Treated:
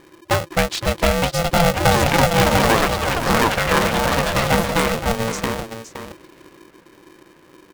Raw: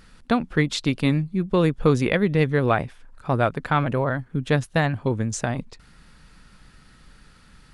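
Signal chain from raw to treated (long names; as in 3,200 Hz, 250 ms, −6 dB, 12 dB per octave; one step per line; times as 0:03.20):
low-pass that shuts in the quiet parts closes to 1,900 Hz, open at −18 dBFS
delay with pitch and tempo change per echo 795 ms, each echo +5 semitones, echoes 3
single-tap delay 517 ms −10.5 dB
ring modulator with a square carrier 340 Hz
level +2 dB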